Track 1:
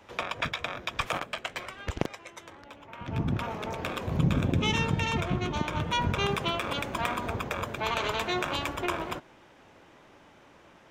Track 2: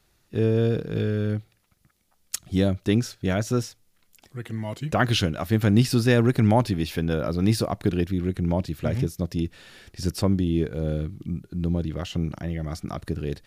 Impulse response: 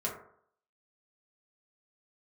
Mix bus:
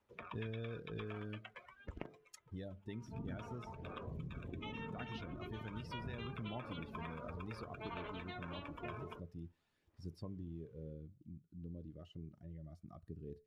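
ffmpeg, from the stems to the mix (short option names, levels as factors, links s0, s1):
-filter_complex "[0:a]acrossover=split=4800[s0][s1];[s1]acompressor=threshold=0.00355:ratio=4:attack=1:release=60[s2];[s0][s2]amix=inputs=2:normalize=0,equalizer=f=690:w=2.3:g=-2.5,aphaser=in_gain=1:out_gain=1:delay=4.7:decay=0.36:speed=0.5:type=sinusoidal,volume=0.158,asplit=2[s3][s4];[s4]volume=0.251[s5];[1:a]volume=0.237,afade=t=out:st=2.03:d=0.68:silence=0.316228,asplit=2[s6][s7];[s7]volume=0.168[s8];[2:a]atrim=start_sample=2205[s9];[s5][s8]amix=inputs=2:normalize=0[s10];[s10][s9]afir=irnorm=-1:irlink=0[s11];[s3][s6][s11]amix=inputs=3:normalize=0,afftdn=nr=16:nf=-49,acrossover=split=1300|2900[s12][s13][s14];[s12]acompressor=threshold=0.00708:ratio=4[s15];[s13]acompressor=threshold=0.002:ratio=4[s16];[s14]acompressor=threshold=0.001:ratio=4[s17];[s15][s16][s17]amix=inputs=3:normalize=0,aphaser=in_gain=1:out_gain=1:delay=4.2:decay=0.21:speed=0.3:type=triangular"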